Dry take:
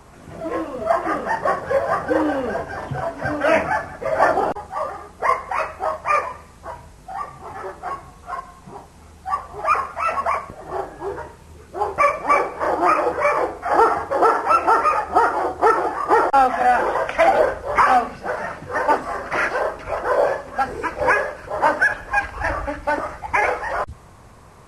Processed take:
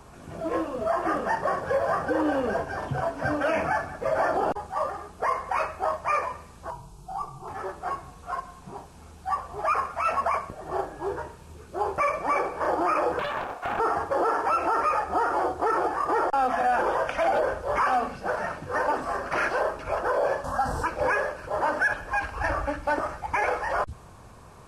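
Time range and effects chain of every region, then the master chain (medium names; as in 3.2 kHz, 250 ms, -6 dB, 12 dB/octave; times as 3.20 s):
6.70–7.48 s: bass shelf 120 Hz +9.5 dB + static phaser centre 370 Hz, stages 8
13.19–13.80 s: compression 16:1, threshold -23 dBFS + resonant low shelf 490 Hz -13 dB, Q 1.5 + loudspeaker Doppler distortion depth 0.51 ms
20.44–20.86 s: static phaser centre 960 Hz, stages 4 + level flattener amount 50%
whole clip: band-stop 2 kHz, Q 8.1; peak limiter -13.5 dBFS; trim -2.5 dB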